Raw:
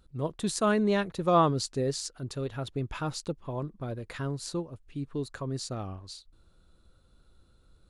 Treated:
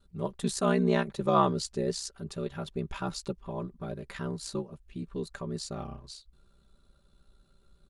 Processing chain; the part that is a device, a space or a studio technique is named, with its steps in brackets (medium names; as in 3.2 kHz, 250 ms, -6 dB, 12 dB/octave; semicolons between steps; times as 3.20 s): ring-modulated robot voice (ring modulator 32 Hz; comb 5.1 ms, depth 67%)